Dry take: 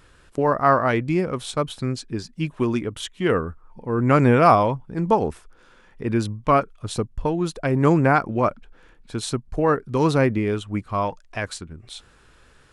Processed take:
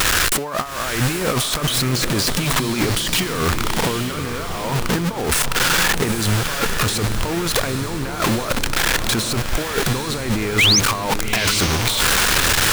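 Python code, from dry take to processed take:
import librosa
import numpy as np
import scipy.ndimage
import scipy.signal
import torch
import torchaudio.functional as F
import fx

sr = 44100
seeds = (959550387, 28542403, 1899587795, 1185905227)

y = x + 0.5 * 10.0 ** (-25.0 / 20.0) * np.sign(x)
y = fx.tilt_shelf(y, sr, db=-5.0, hz=840.0)
y = fx.over_compress(y, sr, threshold_db=-29.0, ratio=-1.0)
y = fx.spec_paint(y, sr, seeds[0], shape='rise', start_s=10.58, length_s=0.22, low_hz=1900.0, high_hz=6800.0, level_db=-21.0)
y = fx.echo_diffused(y, sr, ms=846, feedback_pct=42, wet_db=-7.5)
y = F.gain(torch.from_numpy(y), 7.0).numpy()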